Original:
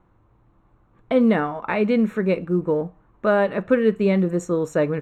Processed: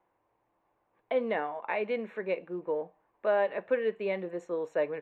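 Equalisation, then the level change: three-band isolator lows -19 dB, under 450 Hz, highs -22 dB, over 3300 Hz; low shelf 96 Hz -11.5 dB; bell 1300 Hz -12 dB 0.45 oct; -4.0 dB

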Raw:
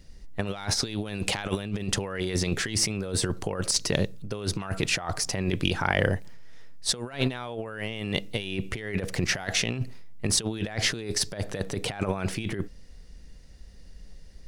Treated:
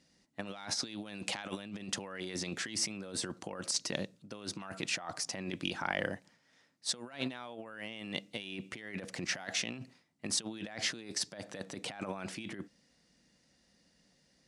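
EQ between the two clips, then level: Chebyshev band-pass 240–8300 Hz, order 2; bell 420 Hz -9.5 dB 0.34 oct; -7.5 dB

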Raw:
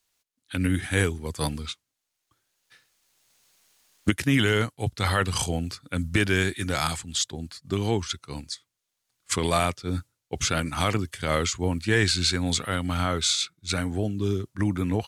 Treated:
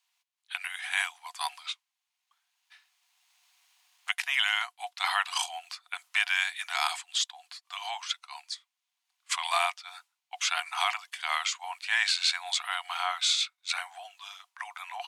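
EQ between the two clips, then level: rippled Chebyshev high-pass 700 Hz, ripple 6 dB; high shelf 5100 Hz -5.5 dB; +3.5 dB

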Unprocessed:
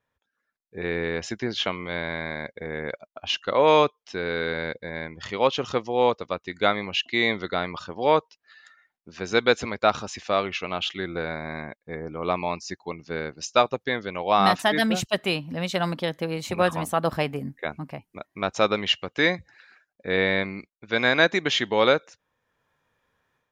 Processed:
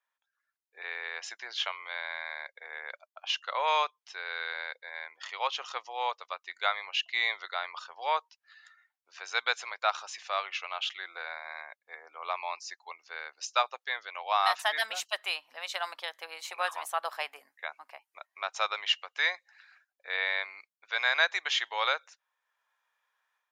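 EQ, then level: HPF 780 Hz 24 dB/oct; -4.5 dB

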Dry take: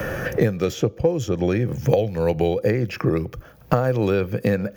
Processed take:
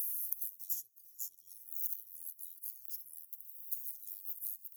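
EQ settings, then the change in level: inverse Chebyshev high-pass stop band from 2100 Hz, stop band 80 dB; +12.0 dB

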